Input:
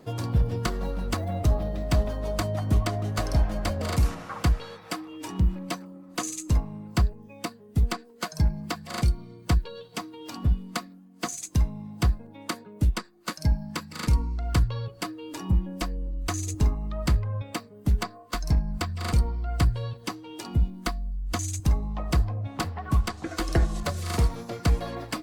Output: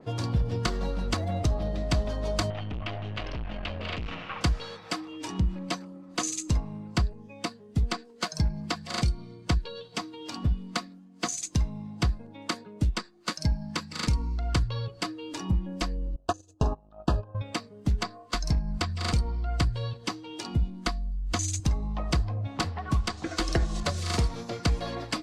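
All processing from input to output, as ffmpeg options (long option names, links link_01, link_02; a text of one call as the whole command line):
ffmpeg -i in.wav -filter_complex "[0:a]asettb=1/sr,asplit=3[link_01][link_02][link_03];[link_01]atrim=end=2.504[link_04];[link_02]atrim=start=2.5:end=4.41,asetpts=PTS-STARTPTS,afade=type=in:duration=0.004:curve=qsin,afade=type=out:start_time=1.906:duration=0.004:curve=qsin,aeval=exprs='(tanh(25.1*val(0)+0.55)-tanh(0.55))/25.1':channel_layout=same,acompressor=threshold=-31dB:ratio=3:attack=3.2:release=140:knee=1:detection=peak,lowpass=frequency=2800:width_type=q:width=3.4[link_05];[link_03]atrim=start=4.406[link_06];[link_04][link_05]acrossfade=duration=0.004:curve1=hsin:curve2=qsin[link_07];[link_07][link_06]acrossfade=duration=0.004:curve1=qsin:curve2=hsin,asettb=1/sr,asplit=3[link_08][link_09][link_10];[link_08]atrim=end=16.164[link_11];[link_09]atrim=start=16.16:end=17.35,asetpts=PTS-STARTPTS,afade=type=in:duration=0.004:curve=qsin,afade=type=out:start_time=1.186:duration=0.004:curve=qsin,agate=range=-31dB:threshold=-27dB:ratio=16:release=100:detection=peak,asuperstop=centerf=2100:order=12:qfactor=3,equalizer=frequency=670:width_type=o:width=2:gain=14.5[link_12];[link_10]atrim=start=17.346[link_13];[link_11][link_12]acrossfade=duration=0.004:curve1=hsin:curve2=qsin[link_14];[link_14][link_13]acrossfade=duration=0.004:curve1=qsin:curve2=hsin,lowpass=6100,acompressor=threshold=-21dB:ratio=6,adynamicequalizer=threshold=0.00398:dfrequency=2900:dqfactor=0.7:tfrequency=2900:tqfactor=0.7:attack=5:release=100:ratio=0.375:range=3.5:mode=boostabove:tftype=highshelf" out.wav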